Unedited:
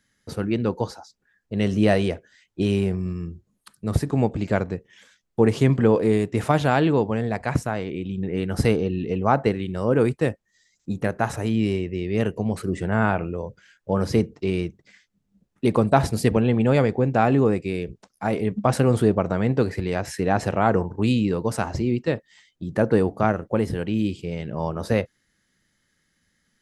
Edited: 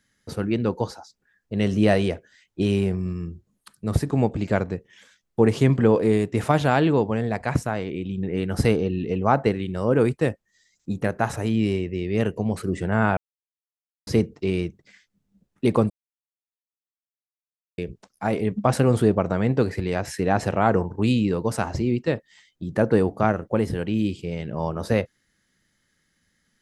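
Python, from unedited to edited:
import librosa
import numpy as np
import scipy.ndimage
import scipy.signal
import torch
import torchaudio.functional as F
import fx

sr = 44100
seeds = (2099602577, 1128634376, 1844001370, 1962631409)

y = fx.edit(x, sr, fx.silence(start_s=13.17, length_s=0.9),
    fx.silence(start_s=15.9, length_s=1.88), tone=tone)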